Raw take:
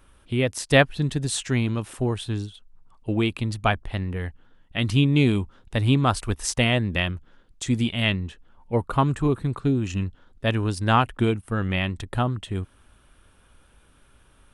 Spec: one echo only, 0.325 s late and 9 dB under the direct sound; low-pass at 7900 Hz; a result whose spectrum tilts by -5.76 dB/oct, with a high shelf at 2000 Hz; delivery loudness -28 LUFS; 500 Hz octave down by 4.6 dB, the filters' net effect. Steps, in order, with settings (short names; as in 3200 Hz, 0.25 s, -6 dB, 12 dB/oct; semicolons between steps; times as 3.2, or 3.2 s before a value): LPF 7900 Hz; bell 500 Hz -5.5 dB; high shelf 2000 Hz -5.5 dB; echo 0.325 s -9 dB; gain -2.5 dB